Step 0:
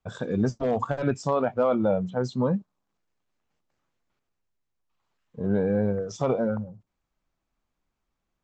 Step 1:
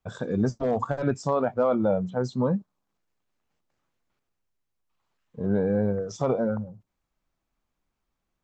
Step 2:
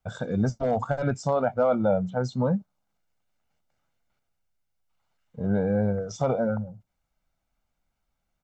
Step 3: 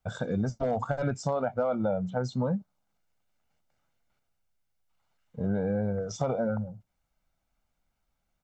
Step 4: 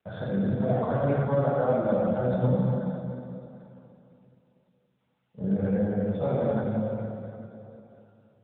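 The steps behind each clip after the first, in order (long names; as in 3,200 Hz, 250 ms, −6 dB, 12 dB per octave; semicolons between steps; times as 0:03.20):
dynamic equaliser 2,800 Hz, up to −6 dB, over −52 dBFS, Q 1.8
comb filter 1.4 ms, depth 46%
downward compressor 4 to 1, threshold −25 dBFS, peak gain reduction 6.5 dB
dense smooth reverb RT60 3 s, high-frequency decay 0.9×, DRR −8.5 dB; level −5 dB; AMR narrowband 10.2 kbit/s 8,000 Hz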